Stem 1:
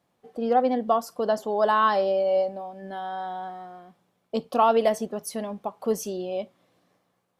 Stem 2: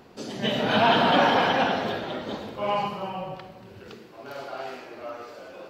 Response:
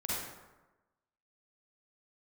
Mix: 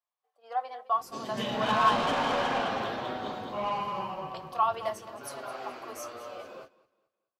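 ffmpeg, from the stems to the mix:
-filter_complex "[0:a]highpass=f=690:w=0.5412,highpass=f=690:w=1.3066,volume=0.631,asplit=2[s0][s1];[s1]volume=0.168[s2];[1:a]asoftclip=type=tanh:threshold=0.0841,adelay=950,volume=0.841,asplit=2[s3][s4];[s4]volume=0.531[s5];[s2][s5]amix=inputs=2:normalize=0,aecho=0:1:215|430|645|860|1075:1|0.32|0.102|0.0328|0.0105[s6];[s0][s3][s6]amix=inputs=3:normalize=0,agate=range=0.2:threshold=0.00631:ratio=16:detection=peak,equalizer=f=1100:w=5.8:g=8,flanger=delay=7.7:depth=1.4:regen=-50:speed=0.91:shape=triangular"

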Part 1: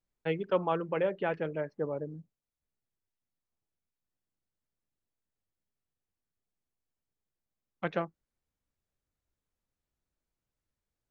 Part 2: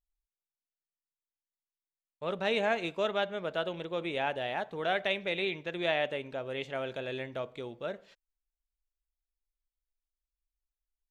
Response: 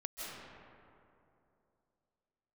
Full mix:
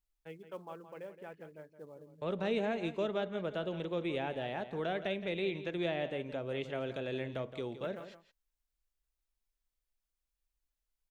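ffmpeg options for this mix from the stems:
-filter_complex "[0:a]acrusher=bits=7:mode=log:mix=0:aa=0.000001,volume=0.141,asplit=2[s0][s1];[s1]volume=0.266[s2];[1:a]acrossover=split=430[s3][s4];[s4]acompressor=threshold=0.00501:ratio=2.5[s5];[s3][s5]amix=inputs=2:normalize=0,volume=1.33,asplit=2[s6][s7];[s7]volume=0.237[s8];[s2][s8]amix=inputs=2:normalize=0,aecho=0:1:169:1[s9];[s0][s6][s9]amix=inputs=3:normalize=0"

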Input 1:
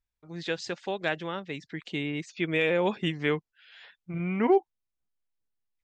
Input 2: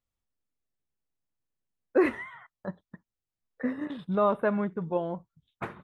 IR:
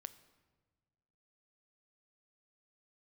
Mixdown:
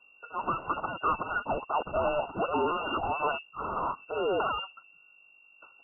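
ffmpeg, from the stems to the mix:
-filter_complex "[0:a]aemphasis=mode=production:type=bsi,asplit=2[s0][s1];[s1]highpass=f=720:p=1,volume=70.8,asoftclip=type=tanh:threshold=0.266[s2];[s0][s2]amix=inputs=2:normalize=0,lowpass=f=5100:p=1,volume=0.501,aeval=exprs='val(0)+0.00224*(sin(2*PI*50*n/s)+sin(2*PI*2*50*n/s)/2+sin(2*PI*3*50*n/s)/3+sin(2*PI*4*50*n/s)/4+sin(2*PI*5*50*n/s)/5)':c=same,volume=0.596,asplit=2[s3][s4];[1:a]volume=1.12,asplit=2[s5][s6];[s6]volume=0.168[s7];[s4]apad=whole_len=257146[s8];[s5][s8]sidechaingate=range=0.0891:threshold=0.00282:ratio=16:detection=peak[s9];[2:a]atrim=start_sample=2205[s10];[s7][s10]afir=irnorm=-1:irlink=0[s11];[s3][s9][s11]amix=inputs=3:normalize=0,afftfilt=real='re*(1-between(b*sr/4096,160,1300))':imag='im*(1-between(b*sr/4096,160,1300))':win_size=4096:overlap=0.75,lowpass=f=2400:t=q:w=0.5098,lowpass=f=2400:t=q:w=0.6013,lowpass=f=2400:t=q:w=0.9,lowpass=f=2400:t=q:w=2.563,afreqshift=-2800"

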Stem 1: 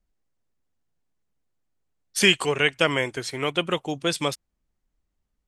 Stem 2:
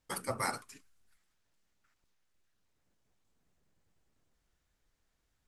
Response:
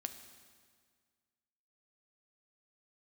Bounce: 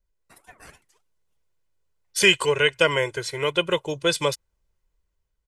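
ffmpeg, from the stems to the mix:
-filter_complex "[0:a]aecho=1:1:2:0.8,volume=0.596[s0];[1:a]highpass=100,aecho=1:1:3.9:0.69,aeval=exprs='val(0)*sin(2*PI*910*n/s+910*0.4/3.5*sin(2*PI*3.5*n/s))':c=same,adelay=200,volume=0.224[s1];[s0][s1]amix=inputs=2:normalize=0,dynaudnorm=f=260:g=7:m=1.78"

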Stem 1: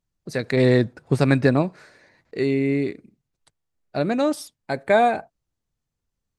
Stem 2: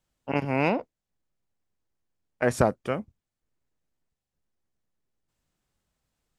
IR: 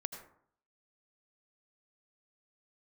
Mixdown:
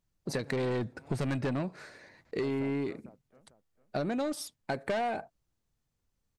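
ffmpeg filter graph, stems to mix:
-filter_complex "[0:a]asoftclip=type=tanh:threshold=0.119,volume=1.06[s0];[1:a]equalizer=f=4500:t=o:w=2.6:g=-11.5,volume=0.133,asplit=2[s1][s2];[s2]volume=0.158,aecho=0:1:449|898|1347|1796:1|0.3|0.09|0.027[s3];[s0][s1][s3]amix=inputs=3:normalize=0,acompressor=threshold=0.0316:ratio=6"

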